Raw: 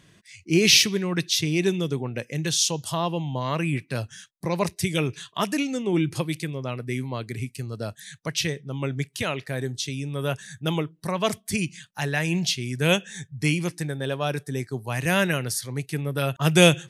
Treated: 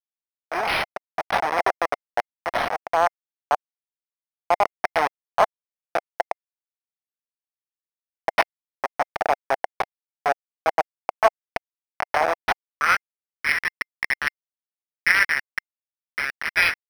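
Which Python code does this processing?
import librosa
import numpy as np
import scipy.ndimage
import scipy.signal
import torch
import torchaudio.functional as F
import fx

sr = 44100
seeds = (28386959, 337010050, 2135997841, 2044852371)

y = fx.delta_hold(x, sr, step_db=-14.5)
y = fx.filter_sweep_highpass(y, sr, from_hz=720.0, to_hz=1900.0, start_s=12.44, end_s=13.14, q=4.0)
y = fx.peak_eq(y, sr, hz=5300.0, db=14.5, octaves=2.8)
y = fx.notch(y, sr, hz=2700.0, q=13.0)
y = fx.rider(y, sr, range_db=4, speed_s=0.5)
y = fx.curve_eq(y, sr, hz=(2100.0, 4300.0, 8100.0), db=(0, -20, -8))
y = np.interp(np.arange(len(y)), np.arange(len(y))[::6], y[::6])
y = F.gain(torch.from_numpy(y), -2.0).numpy()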